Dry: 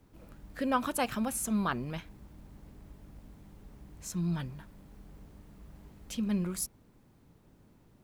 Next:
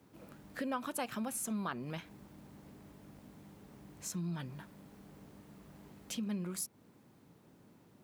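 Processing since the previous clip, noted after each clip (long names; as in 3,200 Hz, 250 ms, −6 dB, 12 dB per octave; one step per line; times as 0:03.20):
high-pass filter 140 Hz 12 dB per octave
downward compressor 2.5 to 1, threshold −40 dBFS, peak gain reduction 11.5 dB
level +1.5 dB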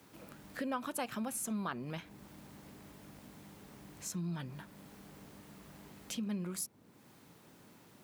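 one half of a high-frequency compander encoder only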